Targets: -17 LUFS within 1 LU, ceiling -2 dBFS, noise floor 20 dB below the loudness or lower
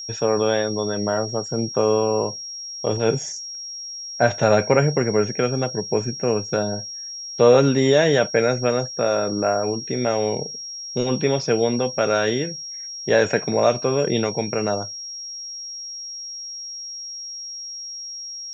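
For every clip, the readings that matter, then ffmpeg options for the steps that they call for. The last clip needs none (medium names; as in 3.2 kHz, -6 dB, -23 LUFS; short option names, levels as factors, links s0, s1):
steady tone 5.6 kHz; tone level -31 dBFS; loudness -22.0 LUFS; peak level -3.5 dBFS; loudness target -17.0 LUFS
-> -af "bandreject=f=5600:w=30"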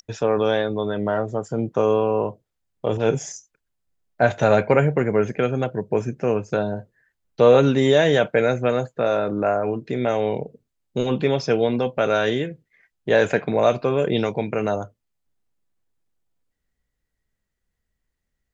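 steady tone not found; loudness -21.5 LUFS; peak level -3.5 dBFS; loudness target -17.0 LUFS
-> -af "volume=1.68,alimiter=limit=0.794:level=0:latency=1"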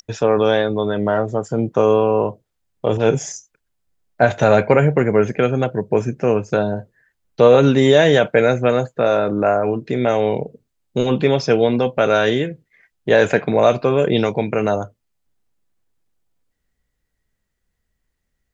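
loudness -17.0 LUFS; peak level -2.0 dBFS; noise floor -75 dBFS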